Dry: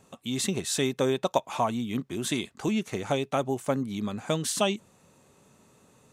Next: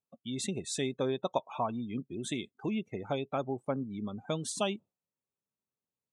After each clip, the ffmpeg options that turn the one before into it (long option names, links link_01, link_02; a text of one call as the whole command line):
ffmpeg -i in.wav -af "afftdn=noise_reduction=33:noise_floor=-36,volume=-6dB" out.wav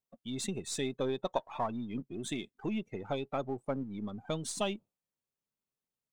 ffmpeg -i in.wav -af "aeval=exprs='if(lt(val(0),0),0.708*val(0),val(0))':channel_layout=same" out.wav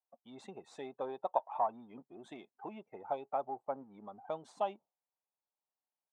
ffmpeg -i in.wav -af "bandpass=frequency=810:width_type=q:width=3.3:csg=0,volume=5.5dB" out.wav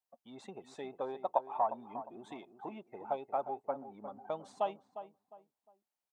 ffmpeg -i in.wav -filter_complex "[0:a]asplit=2[link_01][link_02];[link_02]adelay=355,lowpass=frequency=1500:poles=1,volume=-11dB,asplit=2[link_03][link_04];[link_04]adelay=355,lowpass=frequency=1500:poles=1,volume=0.32,asplit=2[link_05][link_06];[link_06]adelay=355,lowpass=frequency=1500:poles=1,volume=0.32[link_07];[link_01][link_03][link_05][link_07]amix=inputs=4:normalize=0,volume=1dB" out.wav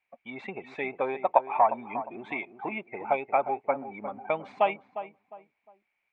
ffmpeg -i in.wav -af "lowpass=frequency=2300:width_type=q:width=13,volume=8.5dB" out.wav